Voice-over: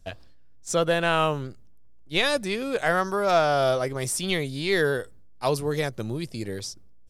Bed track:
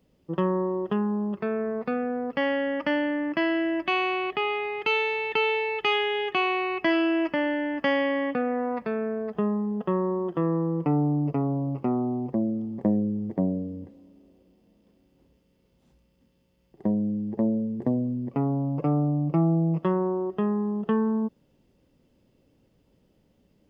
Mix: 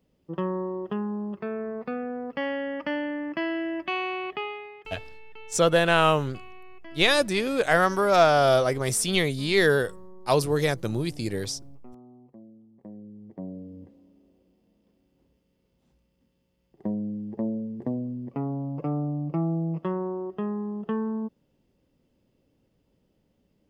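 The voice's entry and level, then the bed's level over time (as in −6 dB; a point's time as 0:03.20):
4.85 s, +2.5 dB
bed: 0:04.36 −4 dB
0:05.11 −23 dB
0:12.74 −23 dB
0:13.91 −4.5 dB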